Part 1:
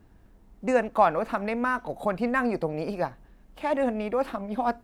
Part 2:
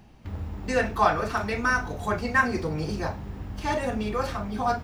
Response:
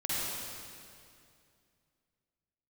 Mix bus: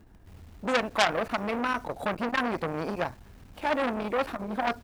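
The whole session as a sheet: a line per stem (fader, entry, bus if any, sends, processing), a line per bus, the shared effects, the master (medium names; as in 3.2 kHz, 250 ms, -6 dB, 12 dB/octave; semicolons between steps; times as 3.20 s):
+2.0 dB, 0.00 s, no send, none
-15.0 dB, 1.8 ms, no send, bass shelf 83 Hz +3 dB; bit crusher 7-bit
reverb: none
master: transformer saturation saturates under 3.3 kHz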